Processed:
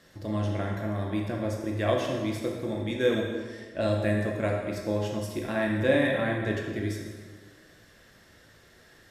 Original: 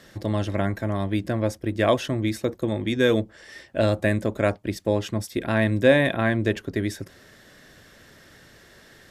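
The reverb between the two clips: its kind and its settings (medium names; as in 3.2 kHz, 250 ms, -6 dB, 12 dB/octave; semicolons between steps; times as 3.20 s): plate-style reverb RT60 1.5 s, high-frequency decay 0.8×, DRR -1 dB; trim -8.5 dB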